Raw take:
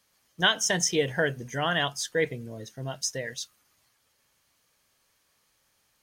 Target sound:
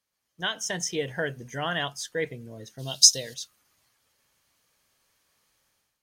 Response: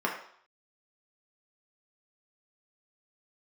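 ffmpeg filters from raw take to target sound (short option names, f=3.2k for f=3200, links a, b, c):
-filter_complex "[0:a]dynaudnorm=f=160:g=5:m=13dB,asplit=3[a][b][c];[a]afade=t=out:st=2.78:d=0.02[d];[b]highshelf=f=2.7k:t=q:w=3:g=13,afade=t=in:st=2.78:d=0.02,afade=t=out:st=3.33:d=0.02[e];[c]afade=t=in:st=3.33:d=0.02[f];[d][e][f]amix=inputs=3:normalize=0,volume=-13.5dB"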